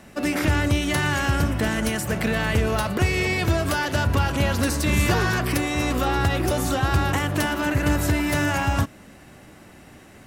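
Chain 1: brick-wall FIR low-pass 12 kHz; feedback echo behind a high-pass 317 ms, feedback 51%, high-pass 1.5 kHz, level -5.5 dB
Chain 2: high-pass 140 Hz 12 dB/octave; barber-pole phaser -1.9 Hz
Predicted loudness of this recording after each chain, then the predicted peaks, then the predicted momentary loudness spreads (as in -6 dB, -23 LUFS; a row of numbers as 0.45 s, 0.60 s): -22.0 LUFS, -27.0 LUFS; -9.5 dBFS, -12.0 dBFS; 3 LU, 3 LU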